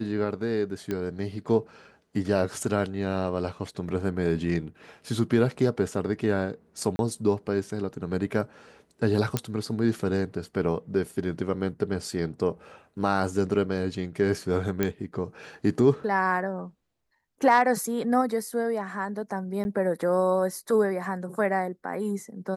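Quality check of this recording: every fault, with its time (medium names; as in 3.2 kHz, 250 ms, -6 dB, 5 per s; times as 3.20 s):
0.91 s: pop -17 dBFS
6.96–6.99 s: dropout 31 ms
9.37 s: pop -10 dBFS
14.83 s: pop -11 dBFS
19.64–19.65 s: dropout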